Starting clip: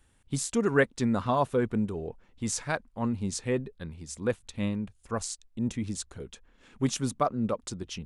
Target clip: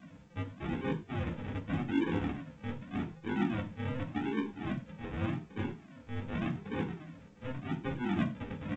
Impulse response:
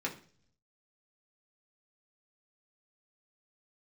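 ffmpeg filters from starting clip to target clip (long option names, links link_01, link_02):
-filter_complex "[0:a]areverse,acompressor=threshold=-40dB:ratio=10,areverse,alimiter=level_in=11.5dB:limit=-24dB:level=0:latency=1:release=296,volume=-11.5dB,aeval=exprs='val(0)+0.000562*sin(2*PI*580*n/s)':channel_layout=same,afreqshift=150,aresample=8000,acrusher=samples=16:mix=1:aa=0.000001:lfo=1:lforange=9.6:lforate=0.93,aresample=44100,asetrate=40517,aresample=44100[link_01];[1:a]atrim=start_sample=2205,afade=type=out:start_time=0.17:duration=0.01,atrim=end_sample=7938[link_02];[link_01][link_02]afir=irnorm=-1:irlink=0,volume=8dB" -ar 16000 -c:a pcm_alaw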